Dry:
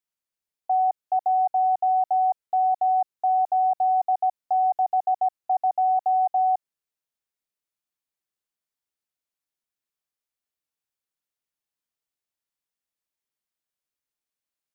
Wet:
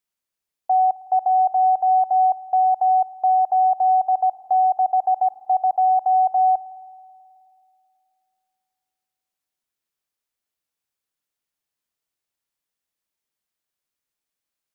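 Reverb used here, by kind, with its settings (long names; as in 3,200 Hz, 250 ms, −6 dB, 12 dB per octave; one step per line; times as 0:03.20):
spring reverb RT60 2.6 s, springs 53 ms, chirp 35 ms, DRR 16 dB
level +4 dB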